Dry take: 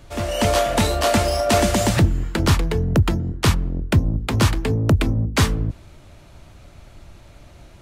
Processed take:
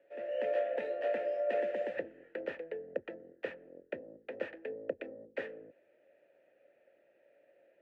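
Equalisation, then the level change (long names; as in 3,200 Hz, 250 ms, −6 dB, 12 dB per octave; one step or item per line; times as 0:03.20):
formant filter e
three-way crossover with the lows and the highs turned down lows −22 dB, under 220 Hz, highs −21 dB, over 2,300 Hz
−4.0 dB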